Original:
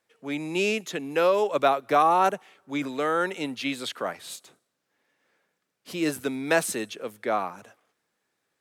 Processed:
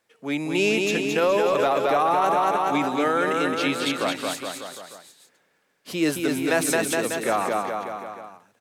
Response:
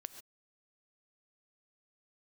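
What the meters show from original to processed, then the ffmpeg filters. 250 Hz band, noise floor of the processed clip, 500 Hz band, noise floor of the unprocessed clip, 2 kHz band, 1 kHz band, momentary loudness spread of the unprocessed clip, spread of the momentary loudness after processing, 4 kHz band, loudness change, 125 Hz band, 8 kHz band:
+5.5 dB, −67 dBFS, +3.5 dB, −79 dBFS, +4.5 dB, +2.5 dB, 14 LU, 13 LU, +5.5 dB, +3.0 dB, +5.0 dB, +6.0 dB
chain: -af "acontrast=71,aecho=1:1:220|418|596.2|756.6|900.9:0.631|0.398|0.251|0.158|0.1,alimiter=limit=-10.5dB:level=0:latency=1:release=29,volume=-2.5dB"

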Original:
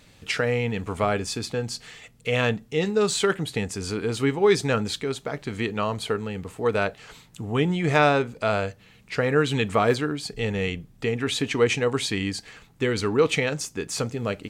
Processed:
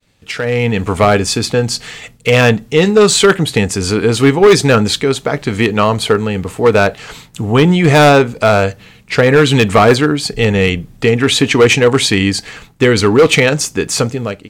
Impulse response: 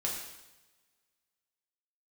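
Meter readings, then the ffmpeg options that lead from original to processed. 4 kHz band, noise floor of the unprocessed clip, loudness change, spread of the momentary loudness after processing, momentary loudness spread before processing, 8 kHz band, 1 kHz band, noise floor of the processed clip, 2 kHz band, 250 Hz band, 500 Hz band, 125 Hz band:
+14.0 dB, −54 dBFS, +13.0 dB, 9 LU, 9 LU, +14.0 dB, +12.5 dB, −43 dBFS, +12.5 dB, +13.5 dB, +13.0 dB, +14.0 dB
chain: -af "asoftclip=type=hard:threshold=-17dB,agate=range=-33dB:threshold=-49dB:ratio=3:detection=peak,dynaudnorm=framelen=220:gausssize=5:maxgain=16dB"

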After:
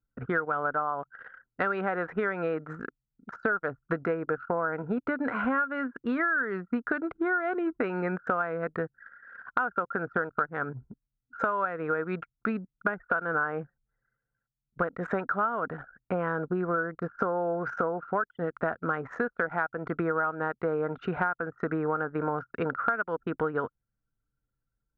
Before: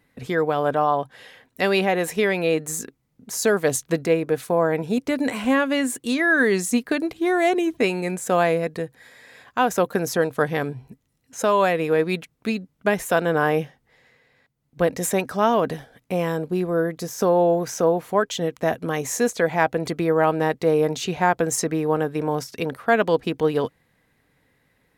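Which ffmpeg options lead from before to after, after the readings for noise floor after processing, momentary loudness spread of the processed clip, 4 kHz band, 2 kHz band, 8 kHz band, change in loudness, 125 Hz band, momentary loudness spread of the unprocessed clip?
below −85 dBFS, 7 LU, below −20 dB, −4.5 dB, below −40 dB, −8.0 dB, −9.0 dB, 8 LU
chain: -af "lowpass=frequency=1400:width_type=q:width=14,acompressor=threshold=-23dB:ratio=12,anlmdn=1,volume=-2dB"

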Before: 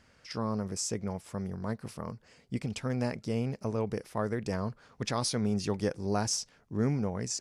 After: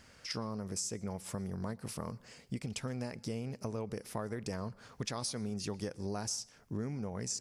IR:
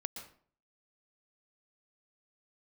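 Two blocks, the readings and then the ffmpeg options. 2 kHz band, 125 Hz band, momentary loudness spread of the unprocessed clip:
−5.5 dB, −6.5 dB, 9 LU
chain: -filter_complex "[0:a]highshelf=frequency=5300:gain=8,acompressor=threshold=-38dB:ratio=6,asplit=2[link_01][link_02];[1:a]atrim=start_sample=2205[link_03];[link_02][link_03]afir=irnorm=-1:irlink=0,volume=-15dB[link_04];[link_01][link_04]amix=inputs=2:normalize=0,volume=1.5dB"

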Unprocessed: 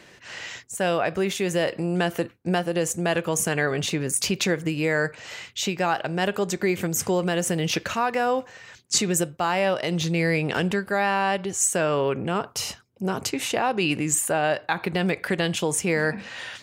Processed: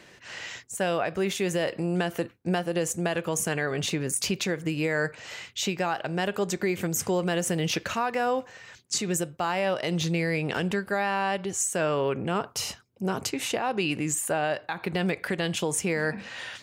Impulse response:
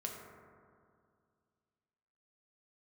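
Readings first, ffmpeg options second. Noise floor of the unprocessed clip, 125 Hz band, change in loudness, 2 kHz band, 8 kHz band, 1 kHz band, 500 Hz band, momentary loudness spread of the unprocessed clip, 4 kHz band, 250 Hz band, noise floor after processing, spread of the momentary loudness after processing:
−51 dBFS, −3.0 dB, −3.5 dB, −3.5 dB, −4.0 dB, −4.0 dB, −3.5 dB, 7 LU, −3.5 dB, −3.0 dB, −53 dBFS, 5 LU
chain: -af "alimiter=limit=-14.5dB:level=0:latency=1:release=211,volume=-2dB"

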